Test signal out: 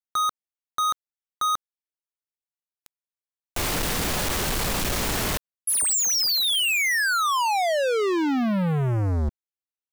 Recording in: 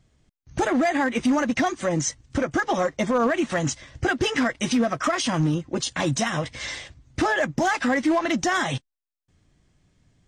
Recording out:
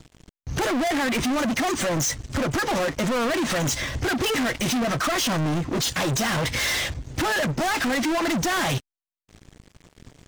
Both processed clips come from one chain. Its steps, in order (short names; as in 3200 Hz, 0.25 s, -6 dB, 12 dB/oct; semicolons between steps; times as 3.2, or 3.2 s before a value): limiter -21.5 dBFS; sample leveller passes 5